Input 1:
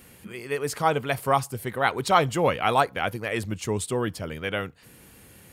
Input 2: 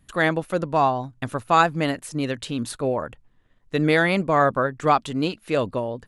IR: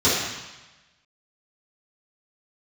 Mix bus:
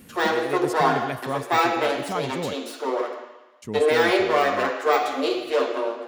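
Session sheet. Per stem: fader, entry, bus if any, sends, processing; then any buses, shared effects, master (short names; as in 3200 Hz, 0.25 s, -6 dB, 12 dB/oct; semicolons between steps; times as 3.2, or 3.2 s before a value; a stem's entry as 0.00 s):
-1.5 dB, 0.00 s, muted 2.54–3.62, no send, bell 230 Hz +11 dB 1.3 oct; auto duck -10 dB, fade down 1.75 s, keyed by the second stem
-2.5 dB, 0.00 s, send -18.5 dB, minimum comb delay 8.4 ms; de-esser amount 60%; steep high-pass 300 Hz 48 dB/oct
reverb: on, RT60 1.1 s, pre-delay 3 ms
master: dry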